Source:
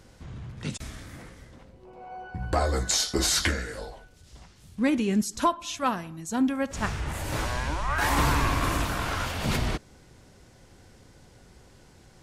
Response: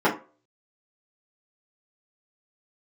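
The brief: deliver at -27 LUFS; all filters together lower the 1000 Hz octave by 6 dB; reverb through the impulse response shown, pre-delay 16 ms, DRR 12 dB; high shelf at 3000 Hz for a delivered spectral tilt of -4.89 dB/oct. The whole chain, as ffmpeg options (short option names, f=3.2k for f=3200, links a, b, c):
-filter_complex "[0:a]equalizer=f=1k:t=o:g=-6.5,highshelf=f=3k:g=-7,asplit=2[a][b];[1:a]atrim=start_sample=2205,adelay=16[c];[b][c]afir=irnorm=-1:irlink=0,volume=-30.5dB[d];[a][d]amix=inputs=2:normalize=0,volume=2.5dB"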